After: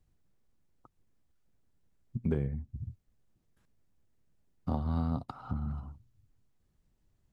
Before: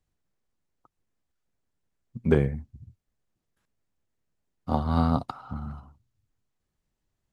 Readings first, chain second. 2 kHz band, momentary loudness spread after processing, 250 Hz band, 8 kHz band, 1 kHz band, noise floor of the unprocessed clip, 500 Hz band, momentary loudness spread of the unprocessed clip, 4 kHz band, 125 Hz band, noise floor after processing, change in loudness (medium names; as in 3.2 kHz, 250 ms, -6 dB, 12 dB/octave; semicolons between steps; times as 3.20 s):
-14.5 dB, 12 LU, -7.0 dB, no reading, -11.5 dB, -82 dBFS, -12.0 dB, 18 LU, under -10 dB, -5.0 dB, -74 dBFS, -8.5 dB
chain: bass shelf 360 Hz +9 dB; compression 3:1, threshold -33 dBFS, peak gain reduction 17 dB